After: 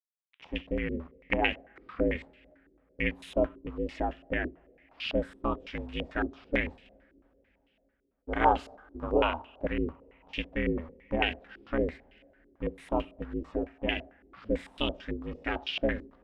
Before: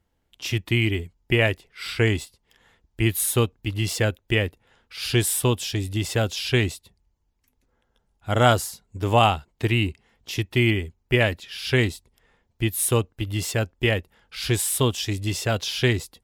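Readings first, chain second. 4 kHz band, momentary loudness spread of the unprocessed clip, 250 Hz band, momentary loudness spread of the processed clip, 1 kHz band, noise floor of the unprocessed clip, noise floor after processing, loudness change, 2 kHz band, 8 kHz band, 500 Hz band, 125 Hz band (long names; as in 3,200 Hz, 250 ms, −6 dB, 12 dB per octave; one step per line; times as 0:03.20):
−11.5 dB, 11 LU, −6.5 dB, 10 LU, −5.0 dB, −71 dBFS, −72 dBFS, −9.0 dB, −8.5 dB, below −35 dB, −6.5 dB, −18.5 dB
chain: bit reduction 7 bits
ring modulation 160 Hz
coupled-rooms reverb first 0.37 s, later 3.8 s, from −22 dB, DRR 13 dB
low-pass on a step sequencer 9 Hz 360–2,800 Hz
level −8.5 dB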